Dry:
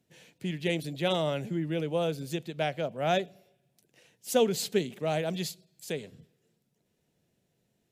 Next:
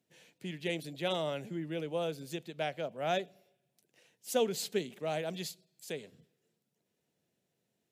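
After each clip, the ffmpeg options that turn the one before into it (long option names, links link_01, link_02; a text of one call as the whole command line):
ffmpeg -i in.wav -af "highpass=frequency=210:poles=1,volume=-4.5dB" out.wav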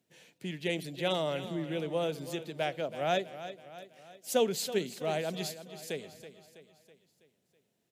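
ffmpeg -i in.wav -af "aecho=1:1:326|652|978|1304|1630:0.224|0.116|0.0605|0.0315|0.0164,volume=2.5dB" out.wav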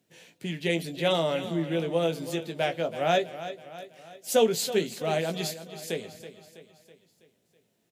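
ffmpeg -i in.wav -filter_complex "[0:a]asplit=2[link_01][link_02];[link_02]adelay=18,volume=-7dB[link_03];[link_01][link_03]amix=inputs=2:normalize=0,volume=4.5dB" out.wav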